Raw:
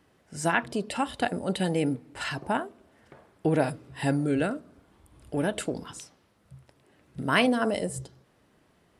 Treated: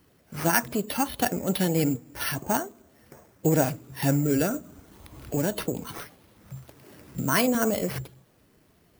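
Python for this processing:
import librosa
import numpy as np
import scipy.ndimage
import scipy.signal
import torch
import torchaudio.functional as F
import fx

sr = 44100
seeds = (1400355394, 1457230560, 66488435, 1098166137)

y = fx.spec_quant(x, sr, step_db=15)
y = fx.low_shelf(y, sr, hz=190.0, db=4.5)
y = np.repeat(y[::6], 6)[:len(y)]
y = fx.high_shelf(y, sr, hz=9100.0, db=12.0)
y = fx.band_squash(y, sr, depth_pct=40, at=(4.54, 7.55))
y = y * librosa.db_to_amplitude(1.0)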